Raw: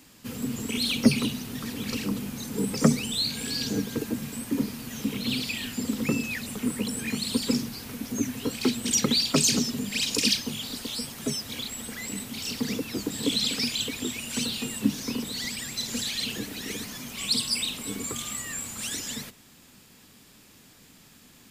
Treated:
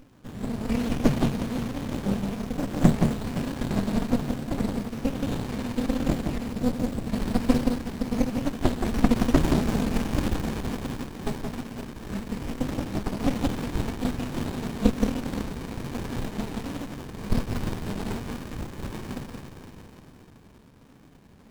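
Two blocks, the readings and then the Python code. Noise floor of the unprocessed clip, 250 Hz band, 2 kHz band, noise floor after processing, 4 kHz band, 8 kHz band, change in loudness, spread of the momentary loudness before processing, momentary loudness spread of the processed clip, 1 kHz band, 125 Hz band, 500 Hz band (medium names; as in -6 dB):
-54 dBFS, +2.5 dB, -4.0 dB, -52 dBFS, -13.5 dB, -14.0 dB, -0.5 dB, 11 LU, 12 LU, +7.0 dB, +6.5 dB, +4.0 dB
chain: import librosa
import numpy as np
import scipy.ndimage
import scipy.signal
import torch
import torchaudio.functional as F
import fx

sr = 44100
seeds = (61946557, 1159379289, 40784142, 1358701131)

p1 = fx.spec_ripple(x, sr, per_octave=0.9, drift_hz=1.2, depth_db=16)
p2 = fx.high_shelf(p1, sr, hz=12000.0, db=-5.0)
p3 = p2 + fx.echo_alternate(p2, sr, ms=173, hz=1900.0, feedback_pct=61, wet_db=-4.0, dry=0)
p4 = fx.dynamic_eq(p3, sr, hz=580.0, q=0.8, threshold_db=-39.0, ratio=4.0, max_db=5)
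p5 = fx.spec_erase(p4, sr, start_s=6.52, length_s=0.57, low_hz=770.0, high_hz=4000.0)
p6 = fx.echo_wet_highpass(p5, sr, ms=250, feedback_pct=65, hz=4500.0, wet_db=-4.5)
y = fx.running_max(p6, sr, window=65)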